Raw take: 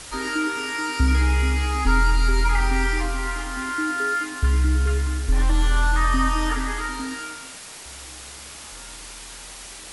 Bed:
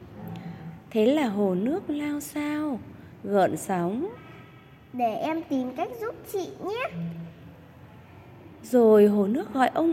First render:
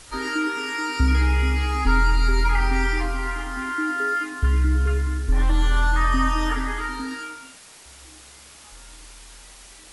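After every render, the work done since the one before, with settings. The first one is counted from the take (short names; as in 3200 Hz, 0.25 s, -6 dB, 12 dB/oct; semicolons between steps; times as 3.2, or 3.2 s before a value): noise print and reduce 7 dB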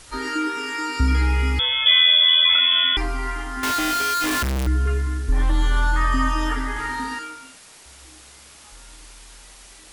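1.59–2.97 inverted band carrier 3400 Hz; 3.63–4.67 infinite clipping; 6.72–7.19 flutter echo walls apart 6.8 m, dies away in 0.69 s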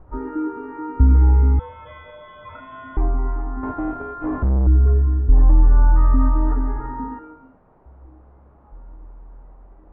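LPF 1000 Hz 24 dB/oct; low shelf 190 Hz +7.5 dB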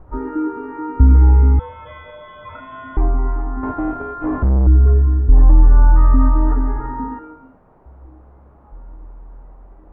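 gain +3.5 dB; limiter -1 dBFS, peak gain reduction 1 dB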